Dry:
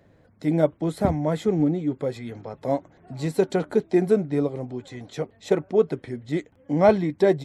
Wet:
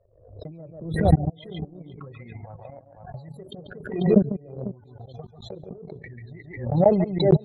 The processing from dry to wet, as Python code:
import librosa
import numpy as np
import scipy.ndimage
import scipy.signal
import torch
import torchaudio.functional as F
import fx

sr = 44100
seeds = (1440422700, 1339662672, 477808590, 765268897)

y = fx.peak_eq(x, sr, hz=270.0, db=-13.5, octaves=0.81)
y = fx.transient(y, sr, attack_db=-6, sustain_db=12)
y = fx.env_phaser(y, sr, low_hz=180.0, high_hz=1300.0, full_db=-24.5)
y = fx.spec_topn(y, sr, count=16)
y = fx.level_steps(y, sr, step_db=22)
y = fx.lowpass(y, sr, hz=fx.steps((0.0, 3000.0), (6.93, 5200.0)), slope=12)
y = fx.echo_multitap(y, sr, ms=(142, 494), db=(-6.5, -14.0))
y = fx.transient(y, sr, attack_db=11, sustain_db=-8)
y = fx.pre_swell(y, sr, db_per_s=78.0)